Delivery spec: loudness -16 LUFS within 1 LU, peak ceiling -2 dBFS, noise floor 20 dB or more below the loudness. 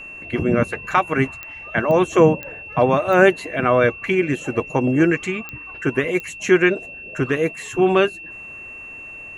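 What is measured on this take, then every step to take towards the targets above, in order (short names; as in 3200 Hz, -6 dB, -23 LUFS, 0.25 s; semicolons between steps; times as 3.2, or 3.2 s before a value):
clicks 6; steady tone 2700 Hz; tone level -34 dBFS; loudness -19.5 LUFS; peak -2.0 dBFS; loudness target -16.0 LUFS
-> de-click; notch 2700 Hz, Q 30; gain +3.5 dB; limiter -2 dBFS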